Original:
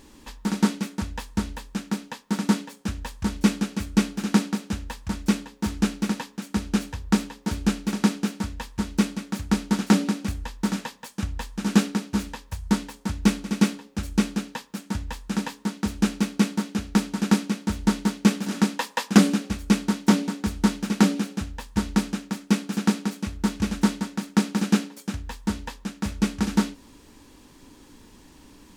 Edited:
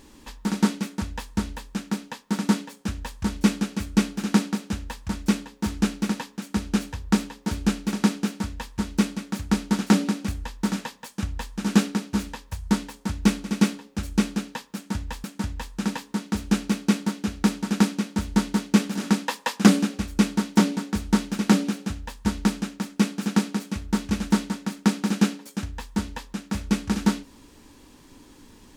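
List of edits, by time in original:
14.75–15.24 s: loop, 2 plays

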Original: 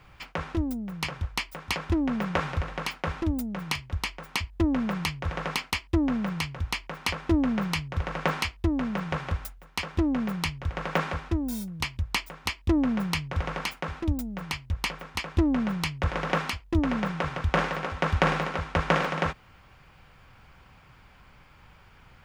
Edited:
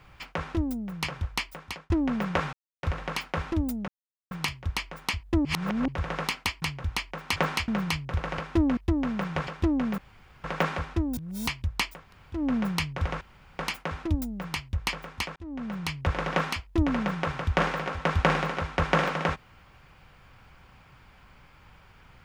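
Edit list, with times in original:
1.45–1.90 s: fade out
2.53 s: insert silence 0.30 s
3.58 s: insert silence 0.43 s
4.72–5.15 s: reverse
5.89–6.38 s: delete
7.12–7.51 s: swap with 8.21–8.53 s
9.23–9.82 s: delete
10.33–10.79 s: room tone
11.52–11.82 s: reverse
12.36–12.76 s: room tone, crossfade 0.24 s
13.56 s: insert room tone 0.38 s
15.33–16.02 s: fade in

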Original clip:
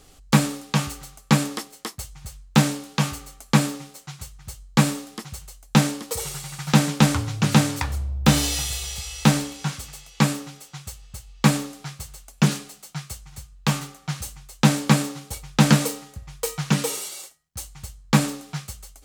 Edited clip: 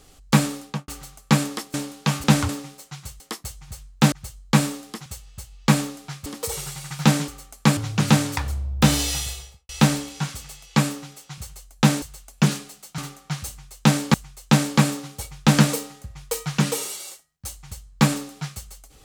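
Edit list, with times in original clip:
0.62–0.88 s: studio fade out
1.74–2.66 s: move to 4.36 s
3.16–3.65 s: swap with 6.96–7.21 s
5.30–5.94 s: swap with 10.82–12.02 s
8.63–9.13 s: studio fade out
12.98–13.76 s: delete
14.26–14.92 s: loop, 2 plays

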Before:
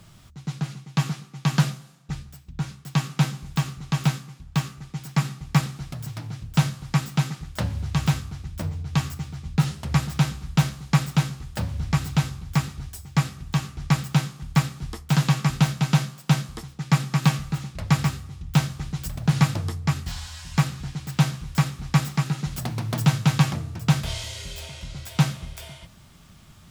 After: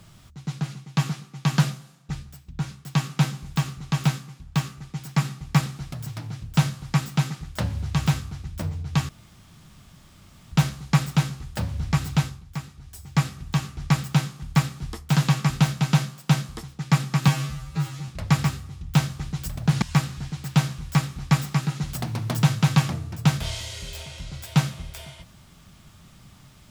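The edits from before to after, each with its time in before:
9.09–10.52 s: room tone
12.20–13.08 s: dip -10 dB, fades 0.24 s
17.28–17.68 s: stretch 2×
19.42–20.45 s: delete

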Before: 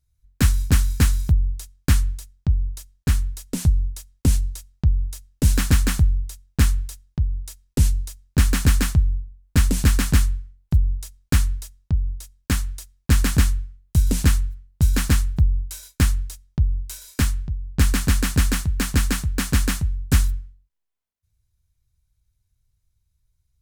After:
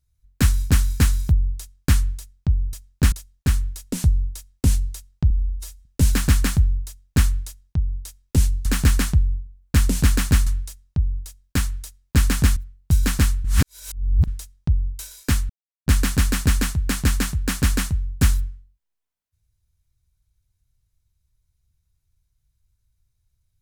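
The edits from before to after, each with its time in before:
4.91–5.28 s: stretch 1.5×
8.08–8.47 s: move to 2.73 s
10.28–11.41 s: delete
13.51–14.47 s: delete
15.35–16.18 s: reverse
17.40–17.77 s: mute

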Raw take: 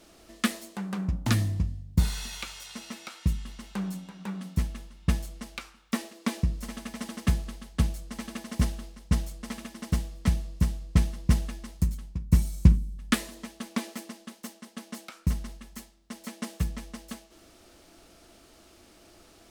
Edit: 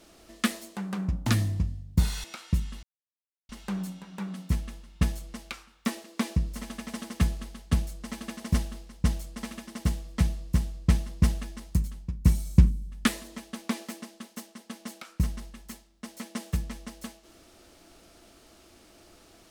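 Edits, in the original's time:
2.24–2.97 s: delete
3.56 s: insert silence 0.66 s

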